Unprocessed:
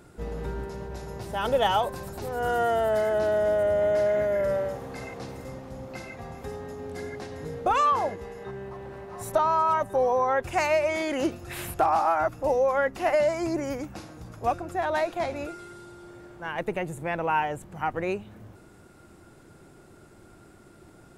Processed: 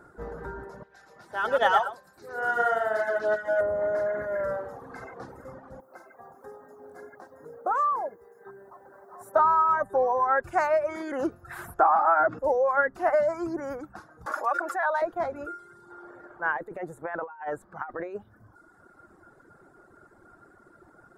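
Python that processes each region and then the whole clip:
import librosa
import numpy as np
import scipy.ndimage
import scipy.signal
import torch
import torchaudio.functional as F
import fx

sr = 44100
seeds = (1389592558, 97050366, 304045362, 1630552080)

y = fx.chain(x, sr, fx.weighting(curve='D'),
    fx.echo_single(ms=113, db=-4.0),
    fx.upward_expand(threshold_db=-36.0, expansion=1.5), at=(0.83, 3.61))
y = fx.chain(y, sr, fx.highpass(hz=580.0, slope=6),
    fx.quant_dither(seeds[0], bits=10, dither='none'),
    fx.peak_eq(hz=2800.0, db=-13.5, octaves=2.0), at=(5.8, 9.36))
y = fx.chain(y, sr, fx.bandpass_edges(low_hz=170.0, high_hz=3000.0),
    fx.env_flatten(amount_pct=50), at=(11.82, 12.39))
y = fx.chain(y, sr, fx.highpass(hz=790.0, slope=12),
    fx.comb(ms=3.5, depth=0.56),
    fx.env_flatten(amount_pct=70), at=(14.26, 15.02))
y = fx.chain(y, sr, fx.bass_treble(bass_db=-8, treble_db=-5),
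    fx.over_compress(threshold_db=-32.0, ratio=-0.5), at=(15.9, 18.23))
y = fx.high_shelf_res(y, sr, hz=2000.0, db=-9.5, q=3.0)
y = fx.dereverb_blind(y, sr, rt60_s=1.2)
y = fx.bass_treble(y, sr, bass_db=-7, treble_db=0)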